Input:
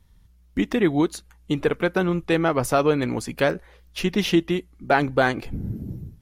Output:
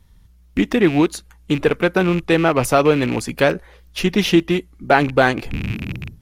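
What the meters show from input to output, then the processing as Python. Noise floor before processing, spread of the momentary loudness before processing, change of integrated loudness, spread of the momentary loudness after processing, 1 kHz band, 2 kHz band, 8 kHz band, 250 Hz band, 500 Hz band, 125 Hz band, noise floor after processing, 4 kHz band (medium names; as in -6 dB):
-55 dBFS, 12 LU, +5.0 dB, 11 LU, +5.0 dB, +5.5 dB, +5.0 dB, +5.0 dB, +5.0 dB, +5.0 dB, -50 dBFS, +5.5 dB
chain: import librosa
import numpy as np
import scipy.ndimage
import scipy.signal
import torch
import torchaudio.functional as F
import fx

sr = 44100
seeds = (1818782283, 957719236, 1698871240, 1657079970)

y = fx.rattle_buzz(x, sr, strikes_db=-31.0, level_db=-24.0)
y = y * librosa.db_to_amplitude(5.0)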